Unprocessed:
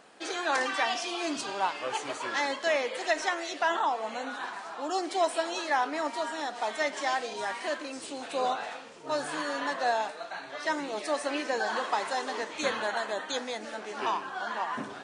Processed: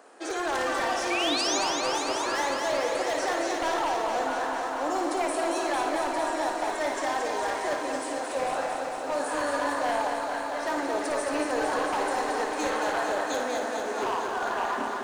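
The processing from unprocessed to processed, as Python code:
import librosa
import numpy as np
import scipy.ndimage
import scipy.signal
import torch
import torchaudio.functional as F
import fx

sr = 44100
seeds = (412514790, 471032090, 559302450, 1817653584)

p1 = scipy.signal.sosfilt(scipy.signal.butter(4, 270.0, 'highpass', fs=sr, output='sos'), x)
p2 = fx.peak_eq(p1, sr, hz=3300.0, db=-10.5, octaves=1.5)
p3 = fx.over_compress(p2, sr, threshold_db=-34.0, ratio=-1.0)
p4 = p2 + (p3 * 10.0 ** (-1.0 / 20.0))
p5 = 10.0 ** (-22.0 / 20.0) * (np.abs((p4 / 10.0 ** (-22.0 / 20.0) + 3.0) % 4.0 - 2.0) - 1.0)
p6 = fx.spec_paint(p5, sr, seeds[0], shape='rise', start_s=1.1, length_s=0.48, low_hz=2200.0, high_hz=7100.0, level_db=-29.0)
p7 = p6 + fx.room_flutter(p6, sr, wall_m=9.7, rt60_s=0.49, dry=0)
p8 = fx.echo_crushed(p7, sr, ms=226, feedback_pct=80, bits=10, wet_db=-5.5)
y = p8 * 10.0 ** (-2.0 / 20.0)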